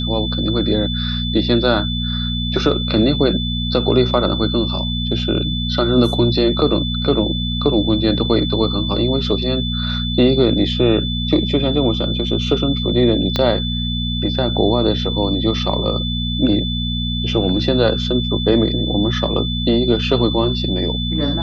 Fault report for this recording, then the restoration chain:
mains hum 60 Hz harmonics 4 −22 dBFS
whistle 3,500 Hz −24 dBFS
0:13.36: click −5 dBFS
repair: click removal
notch filter 3,500 Hz, Q 30
hum removal 60 Hz, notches 4

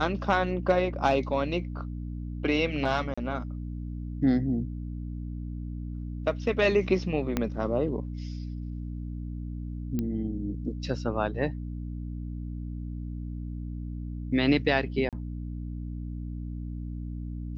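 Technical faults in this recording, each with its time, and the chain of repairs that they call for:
mains hum 60 Hz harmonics 5 −35 dBFS
0:03.14–0:03.17: drop-out 35 ms
0:07.37: click −12 dBFS
0:09.99: click −18 dBFS
0:15.09–0:15.13: drop-out 37 ms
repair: click removal
hum removal 60 Hz, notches 5
repair the gap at 0:03.14, 35 ms
repair the gap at 0:15.09, 37 ms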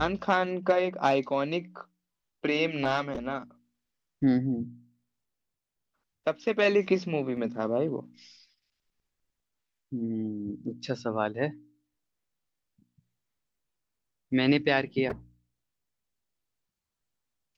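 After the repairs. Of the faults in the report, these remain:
0:07.37: click

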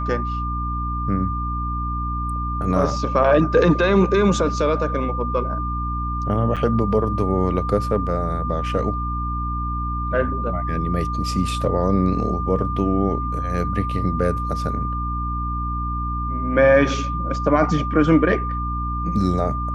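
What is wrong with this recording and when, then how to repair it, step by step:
mains hum 60 Hz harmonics 5 −26 dBFS
whistle 1,200 Hz −26 dBFS
0:06.56–0:06.57: drop-out 6.9 ms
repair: notch filter 1,200 Hz, Q 30
hum removal 60 Hz, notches 5
repair the gap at 0:06.56, 6.9 ms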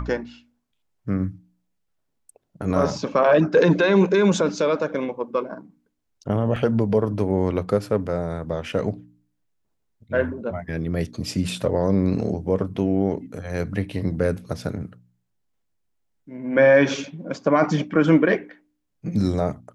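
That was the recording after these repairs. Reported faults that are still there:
none of them is left

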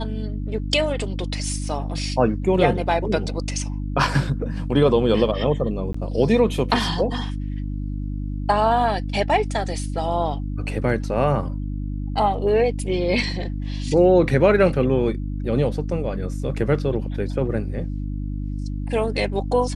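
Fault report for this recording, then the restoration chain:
mains hum 50 Hz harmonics 6 −27 dBFS
0:05.93–0:05.94: drop-out 14 ms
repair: hum removal 50 Hz, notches 6
repair the gap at 0:05.93, 14 ms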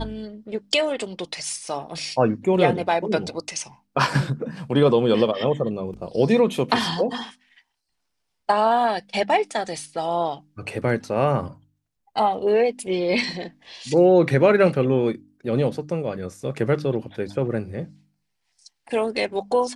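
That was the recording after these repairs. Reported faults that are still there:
none of them is left

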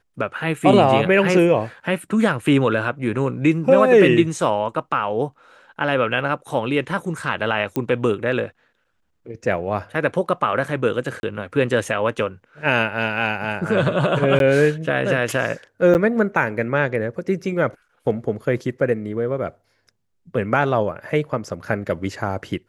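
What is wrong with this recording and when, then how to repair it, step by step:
0:07.76: click −10 dBFS
0:11.20–0:11.23: drop-out 31 ms
0:14.39–0:14.40: drop-out 12 ms
0:15.94–0:15.95: drop-out 9.3 ms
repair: click removal
repair the gap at 0:11.20, 31 ms
repair the gap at 0:14.39, 12 ms
repair the gap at 0:15.94, 9.3 ms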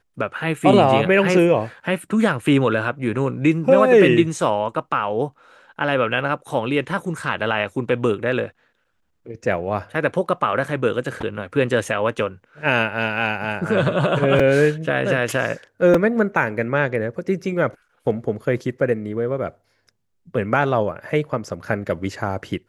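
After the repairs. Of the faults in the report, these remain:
none of them is left

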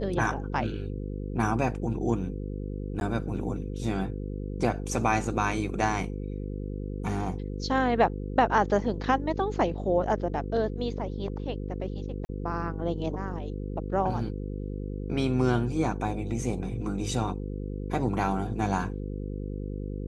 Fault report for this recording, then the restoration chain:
mains buzz 50 Hz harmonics 10 −34 dBFS
0:03.00–0:03.01: drop-out 11 ms
0:12.25–0:12.29: drop-out 40 ms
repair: hum removal 50 Hz, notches 10
repair the gap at 0:03.00, 11 ms
repair the gap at 0:12.25, 40 ms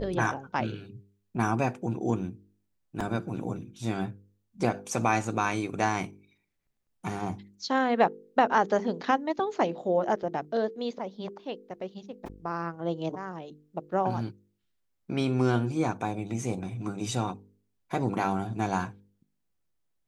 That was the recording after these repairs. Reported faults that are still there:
none of them is left

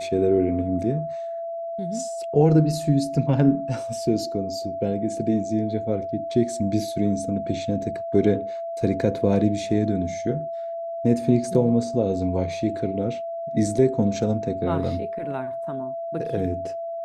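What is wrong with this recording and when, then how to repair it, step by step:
whistle 670 Hz −28 dBFS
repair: notch filter 670 Hz, Q 30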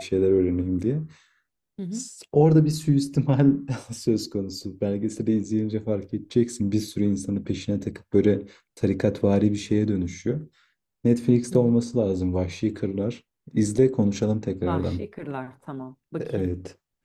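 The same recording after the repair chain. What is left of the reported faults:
none of them is left

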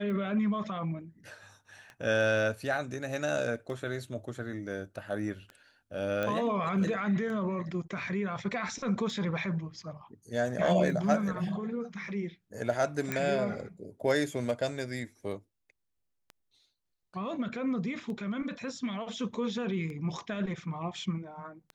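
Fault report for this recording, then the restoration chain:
scratch tick 33 1/3 rpm −30 dBFS
0:06.23: click −19 dBFS
0:13.12: click −16 dBFS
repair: click removal

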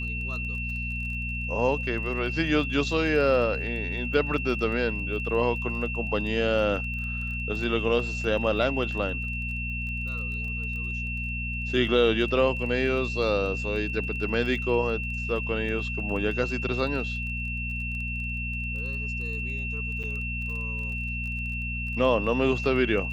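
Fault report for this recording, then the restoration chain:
surface crackle 21 per second −36 dBFS
mains hum 60 Hz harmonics 4 −33 dBFS
whistle 2,700 Hz −32 dBFS
0:20.03–0:20.04: drop-out 6.6 ms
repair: click removal
hum removal 60 Hz, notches 4
notch filter 2,700 Hz, Q 30
repair the gap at 0:20.03, 6.6 ms

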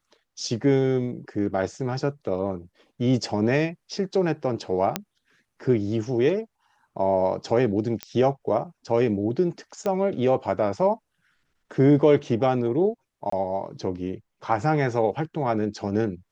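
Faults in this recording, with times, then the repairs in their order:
0:04.96: click −7 dBFS
0:08.03: click −14 dBFS
0:09.86: click −15 dBFS
0:13.30–0:13.32: drop-out 24 ms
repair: click removal
repair the gap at 0:13.30, 24 ms

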